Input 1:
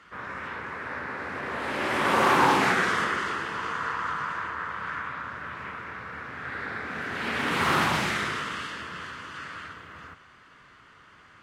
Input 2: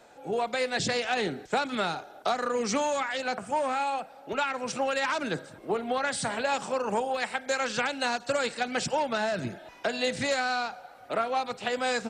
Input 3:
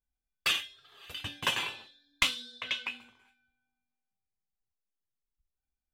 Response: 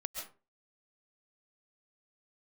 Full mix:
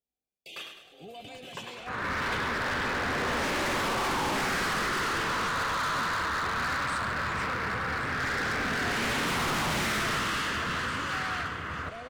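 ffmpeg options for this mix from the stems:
-filter_complex "[0:a]alimiter=limit=0.1:level=0:latency=1:release=109,dynaudnorm=f=110:g=5:m=2.37,volume=28.2,asoftclip=hard,volume=0.0355,adelay=1750,volume=1.12[s0];[1:a]aeval=exprs='0.106*(abs(mod(val(0)/0.106+3,4)-2)-1)':c=same,adelay=750,volume=0.335,asplit=2[s1][s2];[s2]volume=0.188[s3];[2:a]highpass=120,equalizer=f=480:t=o:w=2.4:g=11,volume=0.562,asplit=2[s4][s5];[s5]volume=0.282[s6];[s1][s4]amix=inputs=2:normalize=0,asuperstop=centerf=1300:order=20:qfactor=1,alimiter=level_in=4.73:limit=0.0631:level=0:latency=1:release=17,volume=0.211,volume=1[s7];[3:a]atrim=start_sample=2205[s8];[s3][s8]afir=irnorm=-1:irlink=0[s9];[s6]aecho=0:1:103|206|309|412|515|618|721:1|0.47|0.221|0.104|0.0488|0.0229|0.0108[s10];[s0][s7][s9][s10]amix=inputs=4:normalize=0,lowshelf=f=100:g=7"

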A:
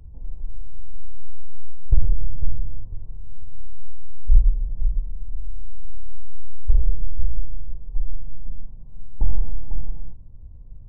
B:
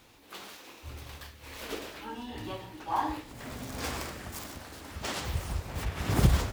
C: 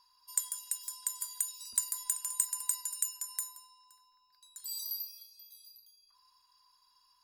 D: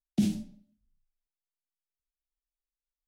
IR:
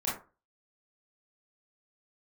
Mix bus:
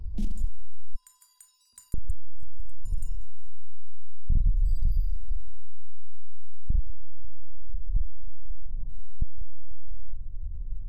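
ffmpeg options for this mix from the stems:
-filter_complex "[0:a]aphaser=in_gain=1:out_gain=1:delay=3.1:decay=0.25:speed=1.7:type=sinusoidal,volume=0.708,asplit=3[s0][s1][s2];[s0]atrim=end=0.95,asetpts=PTS-STARTPTS,afade=t=out:st=0.946:d=0.004:c=hsin[s3];[s1]atrim=start=0.95:end=1.94,asetpts=PTS-STARTPTS,volume=0[s4];[s2]atrim=start=1.94,asetpts=PTS-STARTPTS,afade=t=in:d=0.004:c=hsin[s5];[s3][s4][s5]concat=n=3:v=0:a=1[s6];[2:a]aemphasis=mode=reproduction:type=cd,volume=0.2,asplit=2[s7][s8];[s8]volume=0.224[s9];[3:a]volume=0.299[s10];[s6][s7]amix=inputs=2:normalize=0,acompressor=threshold=0.0708:ratio=2.5,volume=1[s11];[4:a]atrim=start_sample=2205[s12];[s9][s12]afir=irnorm=-1:irlink=0[s13];[s10][s11][s13]amix=inputs=3:normalize=0,lowshelf=f=65:g=11.5,asoftclip=type=tanh:threshold=0.158"

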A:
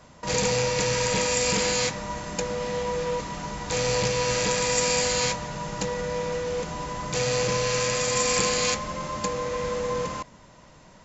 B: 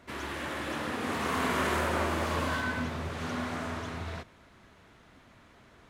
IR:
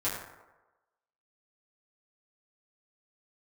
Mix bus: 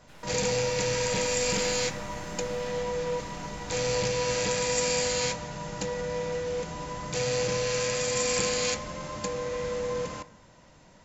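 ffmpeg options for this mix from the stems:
-filter_complex "[0:a]equalizer=f=1100:w=5:g=-4.5,volume=0.596,asplit=2[s0][s1];[s1]volume=0.1[s2];[1:a]aeval=exprs='abs(val(0))':c=same,volume=0.237[s3];[2:a]atrim=start_sample=2205[s4];[s2][s4]afir=irnorm=-1:irlink=0[s5];[s0][s3][s5]amix=inputs=3:normalize=0"

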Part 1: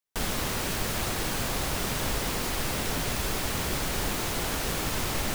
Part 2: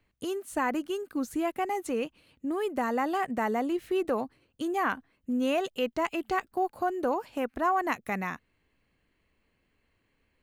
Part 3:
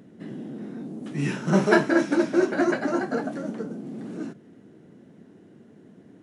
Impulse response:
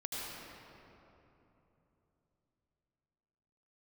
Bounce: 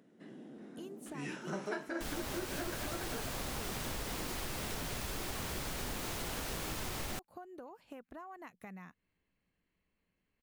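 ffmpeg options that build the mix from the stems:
-filter_complex "[0:a]adelay=1850,volume=0.562[s0];[1:a]equalizer=f=180:w=4.8:g=8.5,acompressor=threshold=0.0178:ratio=16,adelay=550,volume=0.299[s1];[2:a]highpass=f=400:p=1,volume=0.335[s2];[s0][s1][s2]amix=inputs=3:normalize=0,acompressor=threshold=0.0158:ratio=5"

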